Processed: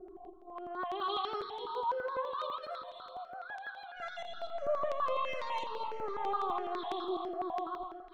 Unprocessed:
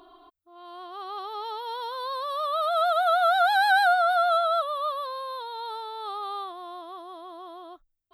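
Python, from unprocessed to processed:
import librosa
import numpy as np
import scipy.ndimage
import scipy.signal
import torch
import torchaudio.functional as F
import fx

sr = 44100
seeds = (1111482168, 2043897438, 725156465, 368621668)

y = fx.median_filter(x, sr, points=25, at=(3.96, 6.32))
y = fx.high_shelf(y, sr, hz=7900.0, db=-5.5)
y = y + 0.83 * np.pad(y, (int(5.4 * sr / 1000.0), 0))[:len(y)]
y = fx.dynamic_eq(y, sr, hz=650.0, q=1.5, threshold_db=-34.0, ratio=4.0, max_db=-6)
y = fx.over_compress(y, sr, threshold_db=-35.0, ratio=-1.0)
y = fx.filter_lfo_lowpass(y, sr, shape='saw_up', hz=0.71, low_hz=360.0, high_hz=5500.0, q=2.0)
y = y + 10.0 ** (-9.0 / 20.0) * np.pad(y, (int(244 * sr / 1000.0), 0))[:len(y)]
y = fx.rev_schroeder(y, sr, rt60_s=3.6, comb_ms=25, drr_db=8.0)
y = fx.phaser_held(y, sr, hz=12.0, low_hz=990.0, high_hz=6500.0)
y = F.gain(torch.from_numpy(y), -2.5).numpy()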